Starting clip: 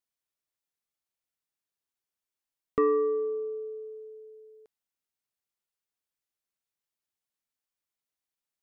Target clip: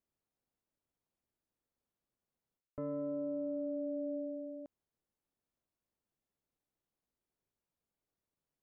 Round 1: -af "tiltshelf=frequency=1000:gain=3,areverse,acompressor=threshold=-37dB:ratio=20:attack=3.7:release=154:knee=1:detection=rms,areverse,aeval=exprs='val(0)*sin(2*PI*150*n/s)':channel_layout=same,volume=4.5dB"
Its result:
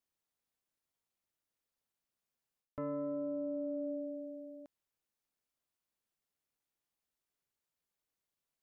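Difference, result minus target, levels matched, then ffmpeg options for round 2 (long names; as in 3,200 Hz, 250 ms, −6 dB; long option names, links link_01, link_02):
1,000 Hz band +6.0 dB
-af "tiltshelf=frequency=1000:gain=10,areverse,acompressor=threshold=-37dB:ratio=20:attack=3.7:release=154:knee=1:detection=rms,areverse,aeval=exprs='val(0)*sin(2*PI*150*n/s)':channel_layout=same,volume=4.5dB"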